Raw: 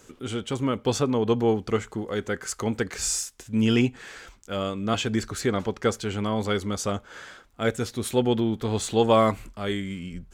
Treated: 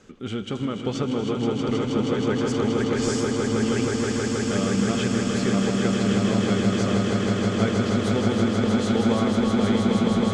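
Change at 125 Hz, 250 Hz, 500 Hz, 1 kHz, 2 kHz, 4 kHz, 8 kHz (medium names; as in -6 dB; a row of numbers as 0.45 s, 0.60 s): +4.5 dB, +6.0 dB, +1.5 dB, -0.5 dB, +3.0 dB, +2.0 dB, -2.0 dB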